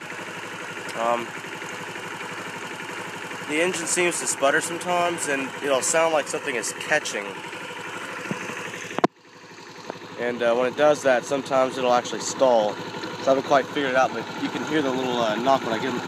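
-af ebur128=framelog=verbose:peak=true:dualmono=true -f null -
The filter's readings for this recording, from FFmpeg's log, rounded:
Integrated loudness:
  I:         -21.2 LUFS
  Threshold: -31.4 LUFS
Loudness range:
  LRA:         7.1 LU
  Threshold: -41.3 LUFS
  LRA low:   -26.3 LUFS
  LRA high:  -19.2 LUFS
True peak:
  Peak:       -4.1 dBFS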